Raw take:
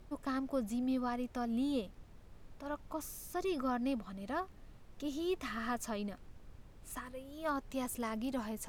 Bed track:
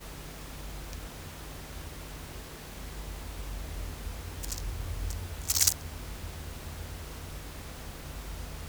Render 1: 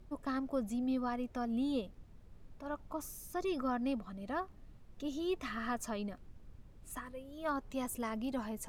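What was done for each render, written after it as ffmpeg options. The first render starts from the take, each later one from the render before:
-af "afftdn=nr=6:nf=-57"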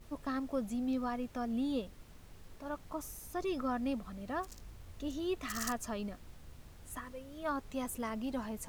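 -filter_complex "[1:a]volume=-17dB[a];[0:a][a]amix=inputs=2:normalize=0"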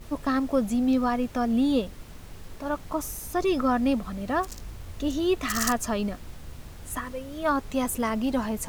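-af "volume=11.5dB"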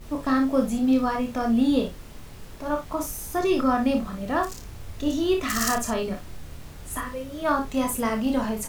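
-filter_complex "[0:a]asplit=2[a][b];[b]adelay=34,volume=-12dB[c];[a][c]amix=inputs=2:normalize=0,aecho=1:1:27|56:0.501|0.422"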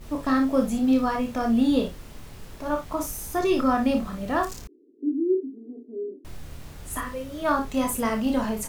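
-filter_complex "[0:a]asettb=1/sr,asplit=3[a][b][c];[a]atrim=end=4.674[d];[b]atrim=start=4.67:end=6.25,asetpts=PTS-STARTPTS,afade=t=in:d=0.004:c=qsin,afade=t=out:st=1.576:d=0.004:c=qsin,asuperpass=centerf=330:order=8:qfactor=2[e];[c]atrim=start=6.246[f];[d][e]acrossfade=d=0.004:c1=hsin:c2=qsin[g];[g][f]acrossfade=d=0.004:c1=qsin:c2=hsin"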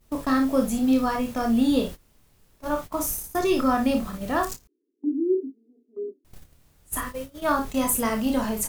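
-af "agate=range=-19dB:threshold=-33dB:ratio=16:detection=peak,highshelf=f=7k:g=9.5"

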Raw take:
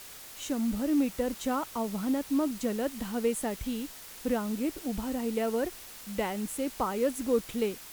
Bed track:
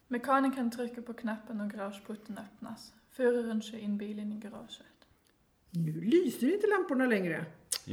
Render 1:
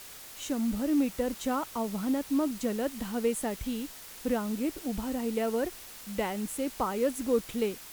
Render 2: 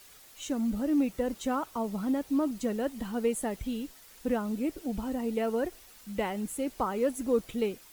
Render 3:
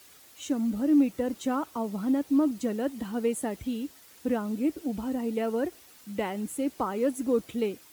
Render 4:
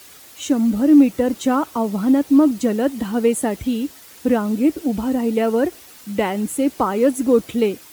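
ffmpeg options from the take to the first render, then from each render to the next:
-af anull
-af "afftdn=nr=9:nf=-47"
-af "highpass=f=64:w=0.5412,highpass=f=64:w=1.3066,equalizer=f=300:w=3.1:g=5.5"
-af "volume=10.5dB"

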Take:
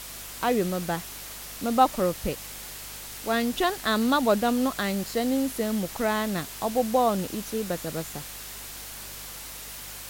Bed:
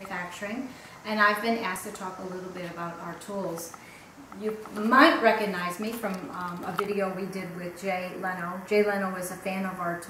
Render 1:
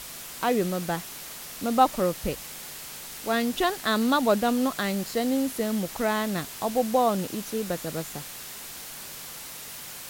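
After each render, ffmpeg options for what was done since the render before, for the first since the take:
-af "bandreject=f=50:t=h:w=4,bandreject=f=100:t=h:w=4"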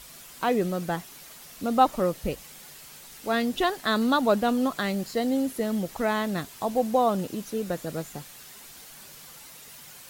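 -af "afftdn=nr=8:nf=-40"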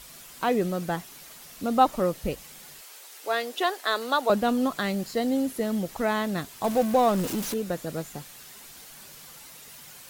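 -filter_complex "[0:a]asettb=1/sr,asplit=3[a][b][c];[a]atrim=end=2.814[d];[b]atrim=start=2.81:end=4.3,asetpts=PTS-STARTPTS,afade=t=in:d=0.004:c=qsin,afade=t=out:st=1.486:d=0.004:c=qsin,highpass=f=380:w=0.5412,highpass=f=380:w=1.3066[e];[c]atrim=start=4.296[f];[d][e]acrossfade=d=0.004:c1=hsin:c2=qsin[g];[g][f]acrossfade=d=0.004:c1=qsin:c2=hsin,asettb=1/sr,asplit=3[h][i][j];[h]atrim=end=6.644[k];[i]atrim=start=6.64:end=7.54,asetpts=PTS-STARTPTS,afade=t=in:d=0.004:c=qsin,afade=t=out:st=0.896:d=0.004:c=qsin,aeval=exprs='val(0)+0.5*0.0335*sgn(val(0))':c=same[l];[j]atrim=start=7.536[m];[k][l]acrossfade=d=0.004:c1=hsin:c2=qsin[n];[n][m]acrossfade=d=0.004:c1=qsin:c2=hsin"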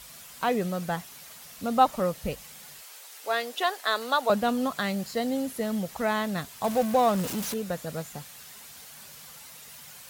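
-af "highpass=43,equalizer=f=330:w=2.4:g=-8.5"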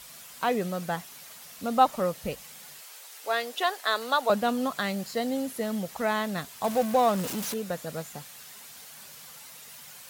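-af "lowshelf=f=100:g=-9.5"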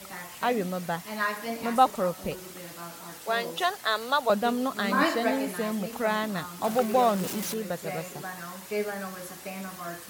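-filter_complex "[1:a]volume=-7dB[a];[0:a][a]amix=inputs=2:normalize=0"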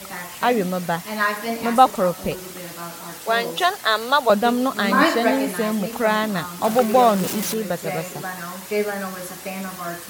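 -af "volume=7.5dB,alimiter=limit=-1dB:level=0:latency=1"

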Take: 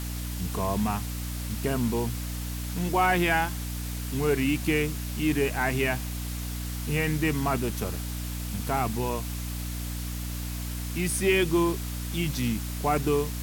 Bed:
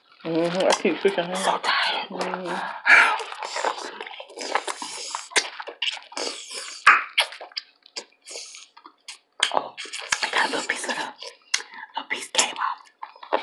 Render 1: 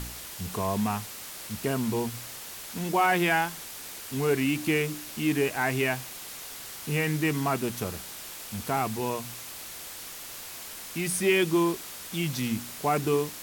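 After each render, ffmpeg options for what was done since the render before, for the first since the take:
-af "bandreject=f=60:t=h:w=4,bandreject=f=120:t=h:w=4,bandreject=f=180:t=h:w=4,bandreject=f=240:t=h:w=4,bandreject=f=300:t=h:w=4"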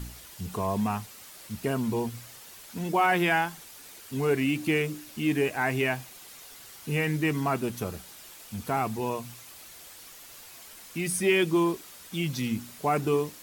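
-af "afftdn=nr=8:nf=-41"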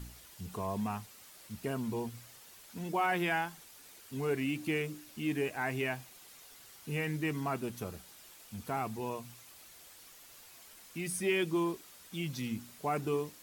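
-af "volume=-7.5dB"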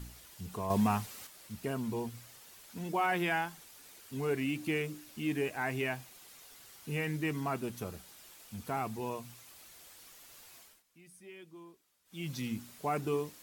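-filter_complex "[0:a]asettb=1/sr,asplit=3[a][b][c];[a]atrim=end=0.704[d];[b]atrim=start=0.7:end=1.27,asetpts=PTS-STARTPTS,afade=t=in:d=0.004:c=qsin,afade=t=out:st=0.566:d=0.004:c=qsin,acontrast=82[e];[c]atrim=start=1.266[f];[d][e]acrossfade=d=0.004:c1=hsin:c2=qsin[g];[g][f]acrossfade=d=0.004:c1=qsin:c2=hsin,asplit=3[h][i][j];[h]atrim=end=10.83,asetpts=PTS-STARTPTS,afade=t=out:st=10.57:d=0.26:silence=0.0944061[k];[i]atrim=start=10.83:end=12.05,asetpts=PTS-STARTPTS,volume=-20.5dB[l];[j]atrim=start=12.05,asetpts=PTS-STARTPTS,afade=t=in:d=0.26:silence=0.0944061[m];[k][l][m]concat=n=3:v=0:a=1"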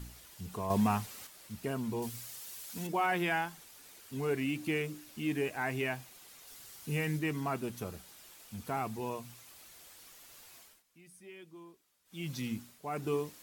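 -filter_complex "[0:a]asettb=1/sr,asplit=3[a][b][c];[a]atrim=end=2.024[d];[b]atrim=start=2.02:end=2.87,asetpts=PTS-STARTPTS,afade=t=in:d=0.004:c=qsin,afade=t=out:st=0.846:d=0.004:c=qsin,highshelf=f=3.3k:g=10.5[e];[c]atrim=start=2.866[f];[d][e]acrossfade=d=0.004:c1=hsin:c2=qsin[g];[g][f]acrossfade=d=0.004:c1=qsin:c2=hsin,asettb=1/sr,asplit=3[h][i][j];[h]atrim=end=6.474[k];[i]atrim=start=6.47:end=7.19,asetpts=PTS-STARTPTS,afade=t=in:d=0.004:c=qsin,afade=t=out:st=0.716:d=0.004:c=qsin,bass=f=250:g=3,treble=f=4k:g=4[l];[j]atrim=start=7.186[m];[k][l]acrossfade=d=0.004:c1=hsin:c2=qsin[n];[n][m]acrossfade=d=0.004:c1=qsin:c2=hsin,asplit=3[o][p][q];[o]atrim=end=12.81,asetpts=PTS-STARTPTS,afade=t=out:st=12.53:d=0.28:silence=0.354813[r];[p]atrim=start=12.81:end=12.82,asetpts=PTS-STARTPTS,volume=-9dB[s];[q]atrim=start=12.82,asetpts=PTS-STARTPTS,afade=t=in:d=0.28:silence=0.354813[t];[r][s][t]concat=n=3:v=0:a=1"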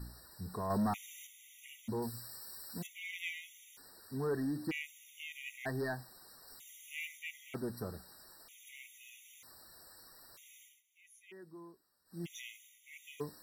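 -af "asoftclip=type=tanh:threshold=-27.5dB,afftfilt=real='re*gt(sin(2*PI*0.53*pts/sr)*(1-2*mod(floor(b*sr/1024/1900),2)),0)':imag='im*gt(sin(2*PI*0.53*pts/sr)*(1-2*mod(floor(b*sr/1024/1900),2)),0)':win_size=1024:overlap=0.75"

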